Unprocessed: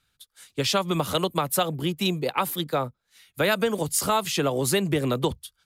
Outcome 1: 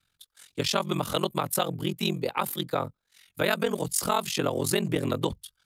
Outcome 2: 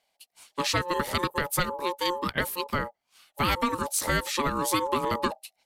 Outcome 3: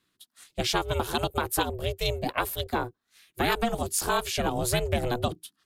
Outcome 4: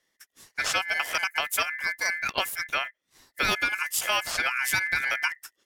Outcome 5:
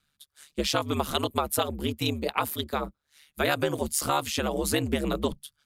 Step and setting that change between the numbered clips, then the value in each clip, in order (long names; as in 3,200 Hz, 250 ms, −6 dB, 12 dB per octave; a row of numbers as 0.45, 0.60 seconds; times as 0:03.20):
ring modulation, frequency: 22, 710, 240, 1,900, 73 Hertz